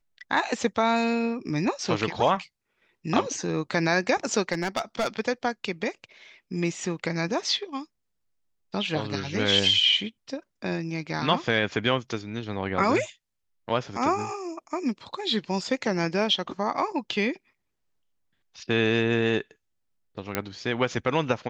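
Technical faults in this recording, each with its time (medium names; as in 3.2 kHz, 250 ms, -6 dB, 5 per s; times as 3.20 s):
4.52–5.08 s: clipped -21 dBFS
20.35 s: pop -8 dBFS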